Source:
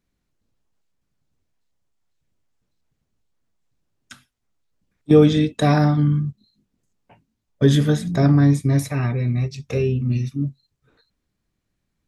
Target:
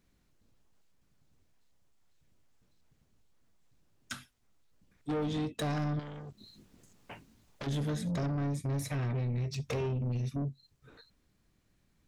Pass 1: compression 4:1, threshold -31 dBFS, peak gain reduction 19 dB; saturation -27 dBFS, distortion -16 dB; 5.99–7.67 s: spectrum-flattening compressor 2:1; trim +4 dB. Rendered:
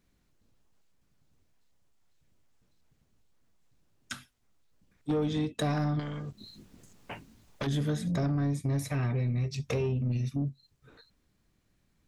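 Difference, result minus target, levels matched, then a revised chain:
saturation: distortion -6 dB
compression 4:1, threshold -31 dBFS, peak gain reduction 19 dB; saturation -33.5 dBFS, distortion -10 dB; 5.99–7.67 s: spectrum-flattening compressor 2:1; trim +4 dB

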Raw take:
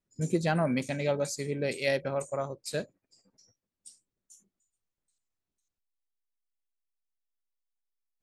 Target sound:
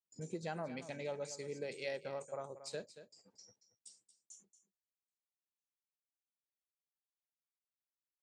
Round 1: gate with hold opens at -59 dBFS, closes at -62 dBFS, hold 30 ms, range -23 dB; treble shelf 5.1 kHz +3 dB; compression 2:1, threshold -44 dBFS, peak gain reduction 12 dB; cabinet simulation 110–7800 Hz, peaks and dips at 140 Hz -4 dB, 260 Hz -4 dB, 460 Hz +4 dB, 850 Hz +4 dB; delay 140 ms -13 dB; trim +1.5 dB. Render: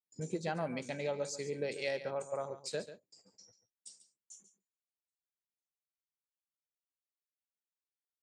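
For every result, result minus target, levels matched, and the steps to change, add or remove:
echo 90 ms early; compression: peak gain reduction -5 dB
change: delay 230 ms -13 dB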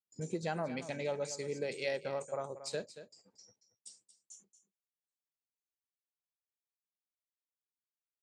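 compression: peak gain reduction -5 dB
change: compression 2:1, threshold -54.5 dBFS, peak gain reduction 17.5 dB

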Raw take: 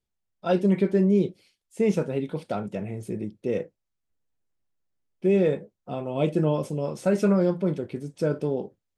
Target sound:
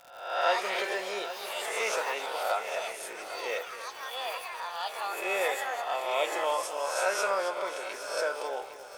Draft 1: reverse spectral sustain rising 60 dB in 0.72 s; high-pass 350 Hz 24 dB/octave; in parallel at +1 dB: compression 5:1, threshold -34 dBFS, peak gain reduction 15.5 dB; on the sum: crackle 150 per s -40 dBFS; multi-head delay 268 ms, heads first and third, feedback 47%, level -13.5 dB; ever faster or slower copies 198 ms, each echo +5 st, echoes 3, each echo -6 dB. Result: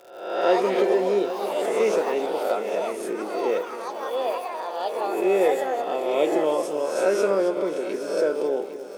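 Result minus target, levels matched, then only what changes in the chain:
250 Hz band +13.0 dB
change: high-pass 750 Hz 24 dB/octave

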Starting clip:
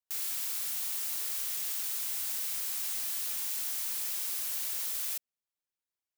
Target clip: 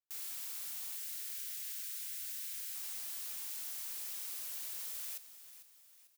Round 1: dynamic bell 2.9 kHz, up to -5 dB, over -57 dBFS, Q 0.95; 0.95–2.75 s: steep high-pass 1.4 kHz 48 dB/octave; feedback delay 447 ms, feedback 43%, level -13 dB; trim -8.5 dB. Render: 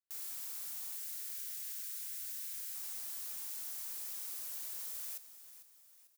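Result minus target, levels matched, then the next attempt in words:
4 kHz band -3.0 dB
0.95–2.75 s: steep high-pass 1.4 kHz 48 dB/octave; feedback delay 447 ms, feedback 43%, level -13 dB; trim -8.5 dB

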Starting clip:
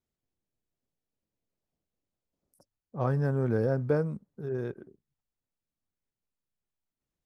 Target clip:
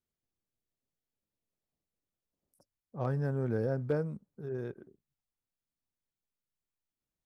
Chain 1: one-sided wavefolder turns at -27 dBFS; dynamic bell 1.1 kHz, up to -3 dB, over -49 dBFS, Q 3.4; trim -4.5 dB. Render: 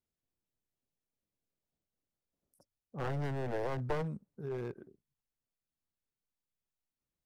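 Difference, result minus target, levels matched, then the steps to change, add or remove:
one-sided wavefolder: distortion +37 dB
change: one-sided wavefolder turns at -15.5 dBFS

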